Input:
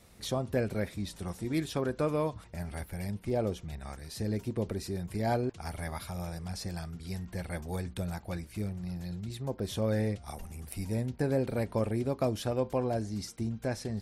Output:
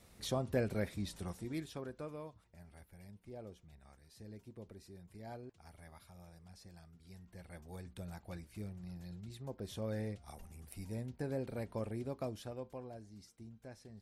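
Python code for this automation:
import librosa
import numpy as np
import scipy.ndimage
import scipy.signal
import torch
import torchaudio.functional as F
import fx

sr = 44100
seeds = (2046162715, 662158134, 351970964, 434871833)

y = fx.gain(x, sr, db=fx.line((1.18, -4.0), (1.69, -12.0), (2.4, -19.0), (6.92, -19.0), (8.26, -10.0), (12.14, -10.0), (12.99, -19.0)))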